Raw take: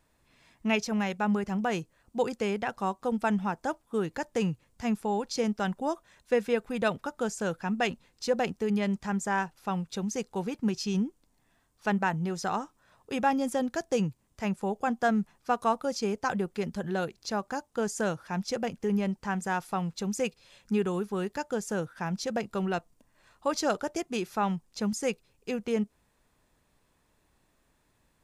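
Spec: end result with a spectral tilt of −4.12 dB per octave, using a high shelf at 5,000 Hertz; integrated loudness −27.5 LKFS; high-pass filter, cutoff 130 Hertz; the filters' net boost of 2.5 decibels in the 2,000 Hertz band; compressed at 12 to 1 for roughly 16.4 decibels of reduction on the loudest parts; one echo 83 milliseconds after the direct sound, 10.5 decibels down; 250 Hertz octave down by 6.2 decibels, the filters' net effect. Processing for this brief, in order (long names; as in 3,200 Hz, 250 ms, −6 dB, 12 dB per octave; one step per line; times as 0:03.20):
high-pass filter 130 Hz
parametric band 250 Hz −7.5 dB
parametric band 2,000 Hz +4.5 dB
high-shelf EQ 5,000 Hz −6 dB
downward compressor 12 to 1, threshold −38 dBFS
single-tap delay 83 ms −10.5 dB
level +15.5 dB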